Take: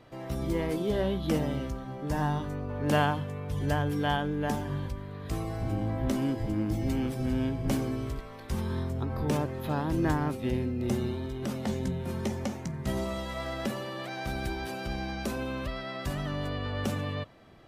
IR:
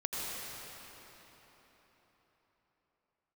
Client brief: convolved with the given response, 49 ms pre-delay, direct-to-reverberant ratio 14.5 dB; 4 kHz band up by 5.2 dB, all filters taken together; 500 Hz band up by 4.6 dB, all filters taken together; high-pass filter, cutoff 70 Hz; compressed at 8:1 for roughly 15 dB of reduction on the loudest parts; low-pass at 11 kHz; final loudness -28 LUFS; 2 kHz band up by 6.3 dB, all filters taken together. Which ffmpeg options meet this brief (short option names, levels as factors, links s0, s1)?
-filter_complex "[0:a]highpass=70,lowpass=11000,equalizer=f=500:t=o:g=5.5,equalizer=f=2000:t=o:g=7,equalizer=f=4000:t=o:g=4,acompressor=threshold=0.0251:ratio=8,asplit=2[s0][s1];[1:a]atrim=start_sample=2205,adelay=49[s2];[s1][s2]afir=irnorm=-1:irlink=0,volume=0.106[s3];[s0][s3]amix=inputs=2:normalize=0,volume=2.51"